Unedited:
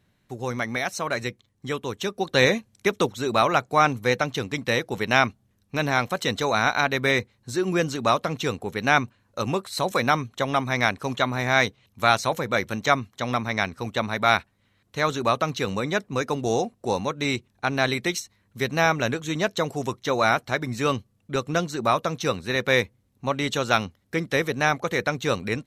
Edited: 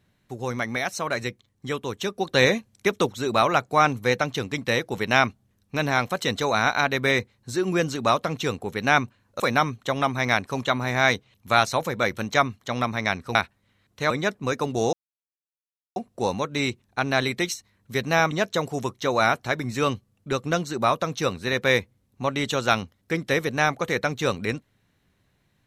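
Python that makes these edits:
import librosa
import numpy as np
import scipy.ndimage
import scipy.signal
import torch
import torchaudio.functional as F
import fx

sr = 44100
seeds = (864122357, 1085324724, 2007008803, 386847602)

y = fx.edit(x, sr, fx.cut(start_s=9.4, length_s=0.52),
    fx.cut(start_s=13.87, length_s=0.44),
    fx.cut(start_s=15.06, length_s=0.73),
    fx.insert_silence(at_s=16.62, length_s=1.03),
    fx.cut(start_s=18.97, length_s=0.37), tone=tone)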